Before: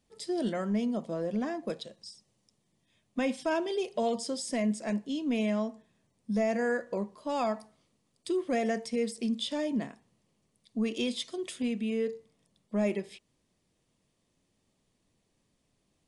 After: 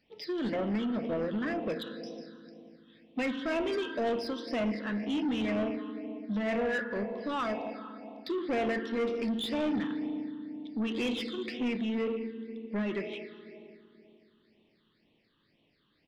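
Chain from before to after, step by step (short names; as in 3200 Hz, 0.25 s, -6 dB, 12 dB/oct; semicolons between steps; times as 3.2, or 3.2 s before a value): on a send at -8 dB: reverb RT60 2.7 s, pre-delay 3 ms; on the sum: downsampling 11025 Hz; phaser stages 8, 2 Hz, lowest notch 660–1500 Hz; overdrive pedal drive 22 dB, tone 3900 Hz, clips at -18.5 dBFS; dynamic EQ 4300 Hz, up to -5 dB, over -49 dBFS, Q 1.6; gain -4 dB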